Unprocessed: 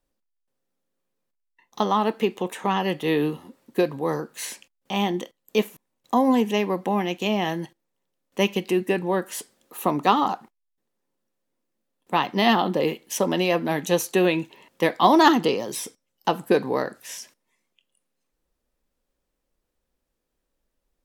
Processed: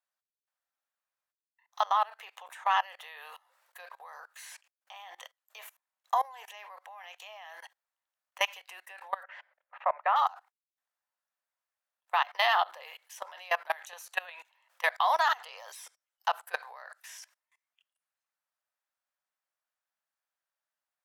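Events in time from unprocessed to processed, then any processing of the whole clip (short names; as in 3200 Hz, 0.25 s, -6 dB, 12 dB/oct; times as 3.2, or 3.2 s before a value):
9.23–10.16 speaker cabinet 370–2300 Hz, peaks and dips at 390 Hz -8 dB, 570 Hz +9 dB, 1200 Hz -3 dB, 2100 Hz +3 dB
whole clip: steep high-pass 630 Hz 48 dB/oct; bell 1500 Hz +7.5 dB 0.97 oct; level quantiser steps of 23 dB; gain -1.5 dB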